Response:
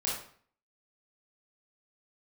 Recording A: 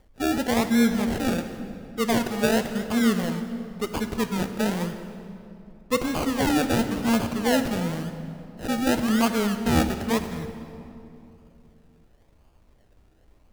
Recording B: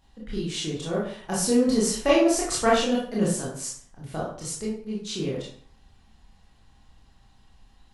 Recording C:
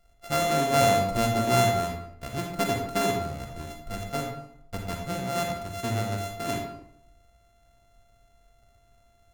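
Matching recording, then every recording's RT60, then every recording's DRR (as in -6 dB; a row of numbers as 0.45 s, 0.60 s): B; 2.8 s, 0.50 s, 0.75 s; 8.0 dB, -6.0 dB, 1.5 dB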